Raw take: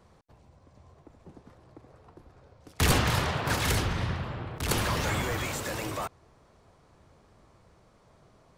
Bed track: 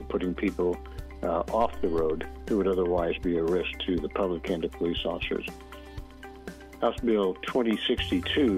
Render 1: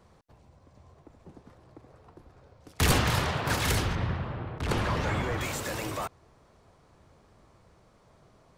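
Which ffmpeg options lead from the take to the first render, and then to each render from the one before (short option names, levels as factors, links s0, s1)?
-filter_complex "[0:a]asettb=1/sr,asplit=3[s0][s1][s2];[s0]atrim=end=3.954[s3];[s1]atrim=start=3.95:end=5.41,asetpts=PTS-STARTPTS,afade=t=in:d=0.004:c=qsin,afade=t=out:st=1.456:d=0.004:c=qsin,aemphasis=mode=reproduction:type=75fm[s4];[s2]atrim=start=5.406[s5];[s3][s4]acrossfade=d=0.004:c1=hsin:c2=qsin[s6];[s6][s5]acrossfade=d=0.004:c1=qsin:c2=hsin"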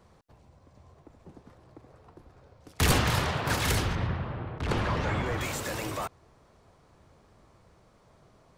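-filter_complex "[0:a]asettb=1/sr,asplit=3[s0][s1][s2];[s0]atrim=end=4.074[s3];[s1]atrim=start=4.07:end=5.26,asetpts=PTS-STARTPTS,afade=t=in:d=0.004:c=qsin,afade=t=out:st=1.186:d=0.004:c=qsin,highshelf=f=8800:g=-11.5[s4];[s2]atrim=start=5.256[s5];[s3][s4]acrossfade=d=0.004:c1=hsin:c2=qsin[s6];[s6][s5]acrossfade=d=0.004:c1=qsin:c2=hsin"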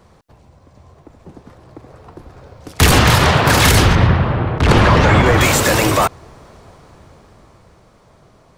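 -af "dynaudnorm=f=200:g=21:m=3.98,alimiter=level_in=3.16:limit=0.891:release=50:level=0:latency=1"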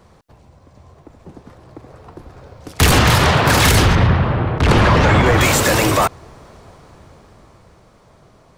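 -af "asoftclip=type=tanh:threshold=0.668"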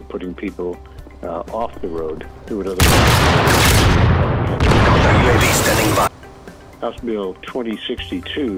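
-filter_complex "[1:a]volume=1.33[s0];[0:a][s0]amix=inputs=2:normalize=0"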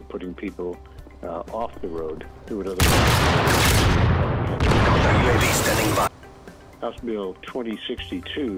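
-af "volume=0.531"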